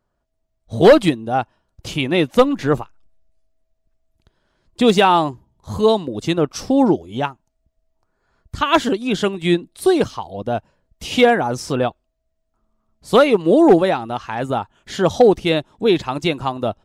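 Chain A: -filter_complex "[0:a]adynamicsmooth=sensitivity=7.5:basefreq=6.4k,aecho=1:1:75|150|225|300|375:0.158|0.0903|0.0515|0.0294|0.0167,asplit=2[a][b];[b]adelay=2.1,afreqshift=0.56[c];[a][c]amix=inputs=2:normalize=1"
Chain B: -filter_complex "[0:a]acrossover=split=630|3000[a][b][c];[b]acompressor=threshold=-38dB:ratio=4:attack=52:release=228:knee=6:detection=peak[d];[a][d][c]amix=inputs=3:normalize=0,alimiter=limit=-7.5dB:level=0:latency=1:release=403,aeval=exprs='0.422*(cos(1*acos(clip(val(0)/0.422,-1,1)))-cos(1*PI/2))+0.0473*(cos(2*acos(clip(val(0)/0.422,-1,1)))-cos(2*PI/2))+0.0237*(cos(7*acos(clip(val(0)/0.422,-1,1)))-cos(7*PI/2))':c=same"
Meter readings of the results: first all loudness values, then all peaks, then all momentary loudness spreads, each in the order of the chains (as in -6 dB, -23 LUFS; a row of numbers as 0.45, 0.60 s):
-20.5, -22.0 LUFS; -1.5, -5.5 dBFS; 14, 14 LU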